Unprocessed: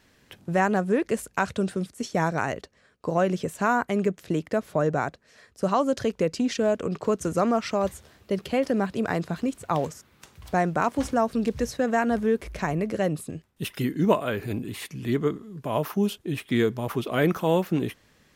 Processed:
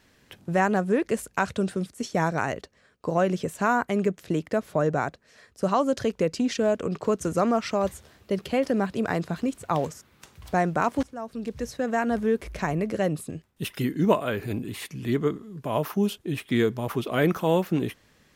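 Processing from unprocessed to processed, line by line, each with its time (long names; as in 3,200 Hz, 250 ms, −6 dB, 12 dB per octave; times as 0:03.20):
0:11.03–0:12.68: fade in equal-power, from −21.5 dB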